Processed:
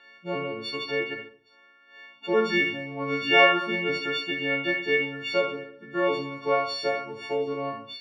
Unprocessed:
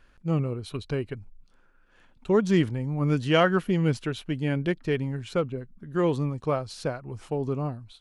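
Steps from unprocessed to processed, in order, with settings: frequency quantiser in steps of 4 st; bell 1200 Hz -10.5 dB 1.5 oct; in parallel at +3 dB: compressor, threshold -34 dBFS, peak gain reduction 15.5 dB; on the sum: BPF 650–6700 Hz; air absorption 370 m; Schroeder reverb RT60 0.52 s, combs from 28 ms, DRR 3 dB; gain +7 dB

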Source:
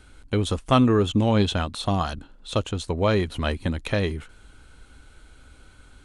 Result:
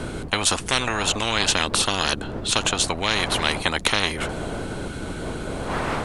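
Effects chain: wind noise 82 Hz -21 dBFS; spectral compressor 10:1; gain -2.5 dB

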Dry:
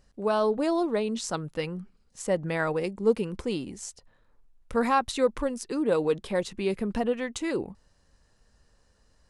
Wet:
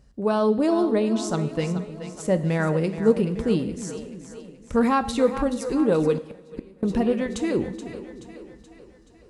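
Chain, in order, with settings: HPF 47 Hz 12 dB/oct; low shelf 300 Hz +11.5 dB; on a send: split-band echo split 360 Hz, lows 0.311 s, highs 0.427 s, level -11 dB; 6.17–6.83 on the sum: flipped gate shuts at -20 dBFS, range -29 dB; two-slope reverb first 0.72 s, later 2.6 s, from -18 dB, DRR 10.5 dB

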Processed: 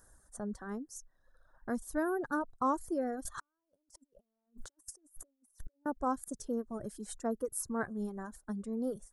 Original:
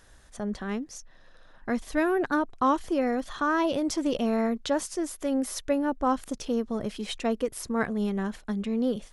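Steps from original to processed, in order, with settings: EQ curve 1600 Hz 0 dB, 2500 Hz -24 dB, 8600 Hz +9 dB; 3.25–5.86 negative-ratio compressor -44 dBFS, ratio -0.5; reverb removal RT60 1.6 s; gain -7 dB

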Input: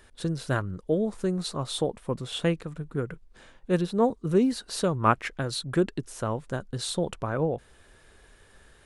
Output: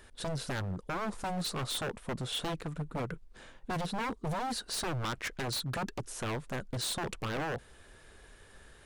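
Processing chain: limiter -19 dBFS, peak gain reduction 11 dB; wavefolder -29 dBFS

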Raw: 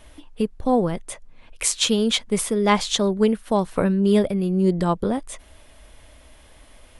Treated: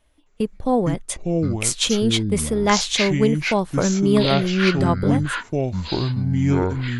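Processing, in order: gate -35 dBFS, range -16 dB; 1.07–1.63 bell 5700 Hz +10 dB 2.1 oct; echoes that change speed 0.262 s, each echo -7 st, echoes 2

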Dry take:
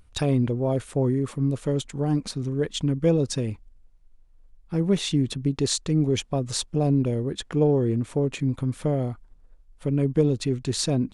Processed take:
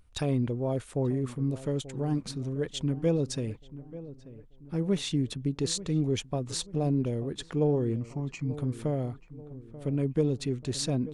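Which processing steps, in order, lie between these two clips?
7.96–8.51 fixed phaser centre 2400 Hz, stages 8; on a send: darkening echo 0.886 s, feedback 45%, low-pass 1400 Hz, level -15.5 dB; on the sum: gain -5.5 dB

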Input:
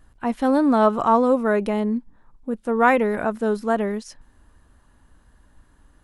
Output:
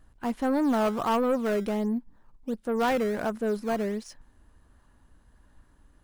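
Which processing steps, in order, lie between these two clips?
in parallel at -10 dB: decimation with a swept rate 14×, swing 160% 1.4 Hz; on the sum: soft clip -13.5 dBFS, distortion -12 dB; gain -6 dB

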